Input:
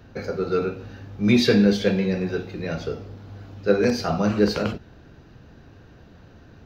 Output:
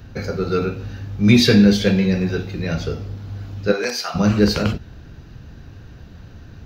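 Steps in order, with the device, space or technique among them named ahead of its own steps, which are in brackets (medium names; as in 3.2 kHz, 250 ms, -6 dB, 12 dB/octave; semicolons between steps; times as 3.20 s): 3.71–4.14 s: high-pass 400 Hz -> 1.1 kHz 12 dB/octave; smiley-face EQ (bass shelf 170 Hz +7 dB; peaking EQ 490 Hz -5 dB 2.7 oct; treble shelf 6 kHz +5 dB); trim +5.5 dB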